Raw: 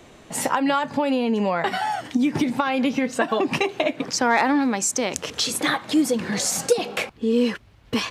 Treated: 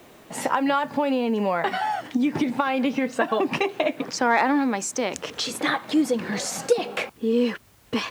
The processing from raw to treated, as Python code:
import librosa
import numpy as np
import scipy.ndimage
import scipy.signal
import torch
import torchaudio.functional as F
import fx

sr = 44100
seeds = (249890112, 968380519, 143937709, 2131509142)

y = fx.high_shelf(x, sr, hz=4600.0, db=-9.5)
y = fx.quant_dither(y, sr, seeds[0], bits=10, dither='triangular')
y = fx.low_shelf(y, sr, hz=110.0, db=-11.5)